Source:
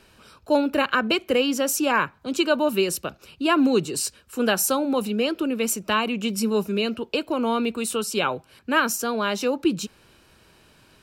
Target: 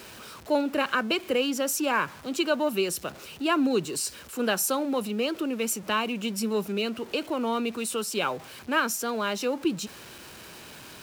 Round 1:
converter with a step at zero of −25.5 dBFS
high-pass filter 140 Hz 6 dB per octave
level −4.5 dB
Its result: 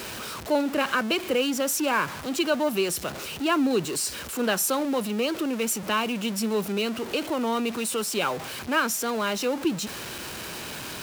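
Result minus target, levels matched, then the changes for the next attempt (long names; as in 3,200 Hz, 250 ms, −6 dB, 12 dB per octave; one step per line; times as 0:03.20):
converter with a step at zero: distortion +9 dB
change: converter with a step at zero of −35.5 dBFS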